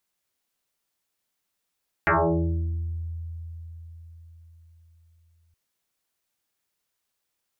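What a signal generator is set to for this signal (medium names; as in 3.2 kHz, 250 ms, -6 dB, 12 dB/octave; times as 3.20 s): FM tone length 3.47 s, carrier 83 Hz, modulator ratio 3, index 8.5, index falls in 1.15 s exponential, decay 4.63 s, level -16.5 dB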